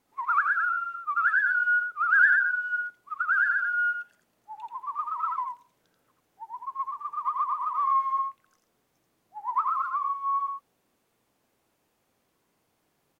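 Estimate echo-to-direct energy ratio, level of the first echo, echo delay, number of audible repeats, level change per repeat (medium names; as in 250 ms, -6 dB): -4.5 dB, -4.5 dB, 85 ms, 1, no regular repeats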